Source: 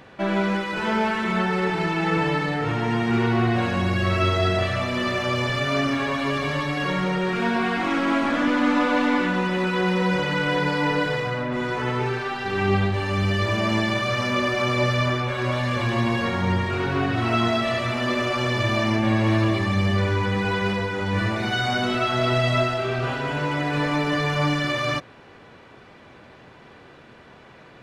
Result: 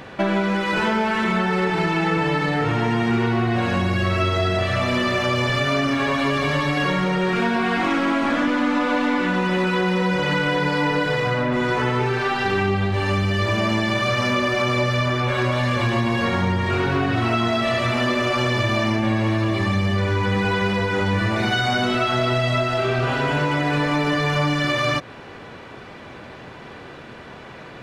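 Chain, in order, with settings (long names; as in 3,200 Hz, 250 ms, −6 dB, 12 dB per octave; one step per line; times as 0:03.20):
downward compressor, threshold −26 dBFS, peak gain reduction 10 dB
level +8.5 dB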